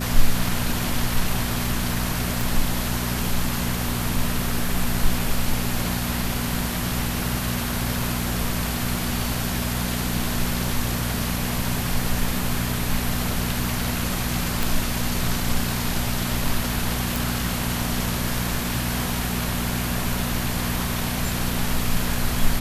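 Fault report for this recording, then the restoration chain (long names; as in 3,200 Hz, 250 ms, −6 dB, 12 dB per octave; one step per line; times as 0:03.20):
mains hum 60 Hz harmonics 4 −28 dBFS
0:02.41: click
0:14.63: click
0:17.16: click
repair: click removal
hum removal 60 Hz, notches 4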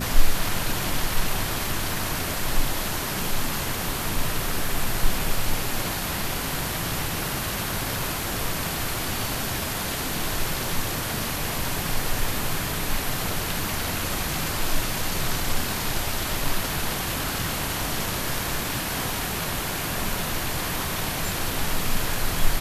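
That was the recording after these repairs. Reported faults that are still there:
0:02.41: click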